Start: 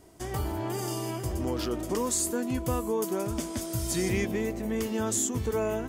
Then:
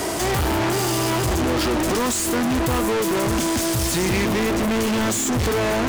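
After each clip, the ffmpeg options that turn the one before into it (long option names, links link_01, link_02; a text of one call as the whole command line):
ffmpeg -i in.wav -filter_complex "[0:a]acrossover=split=290[link_01][link_02];[link_02]acompressor=threshold=-46dB:ratio=2[link_03];[link_01][link_03]amix=inputs=2:normalize=0,lowshelf=frequency=95:gain=10,asplit=2[link_04][link_05];[link_05]highpass=frequency=720:poles=1,volume=44dB,asoftclip=type=tanh:threshold=-17dB[link_06];[link_04][link_06]amix=inputs=2:normalize=0,lowpass=frequency=6900:poles=1,volume=-6dB,volume=2.5dB" out.wav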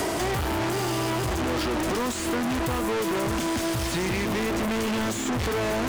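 ffmpeg -i in.wav -filter_complex "[0:a]acrossover=split=680|4100[link_01][link_02][link_03];[link_01]acompressor=threshold=-27dB:ratio=4[link_04];[link_02]acompressor=threshold=-30dB:ratio=4[link_05];[link_03]acompressor=threshold=-38dB:ratio=4[link_06];[link_04][link_05][link_06]amix=inputs=3:normalize=0" out.wav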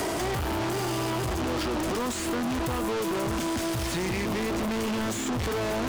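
ffmpeg -i in.wav -af "asoftclip=type=tanh:threshold=-23dB" out.wav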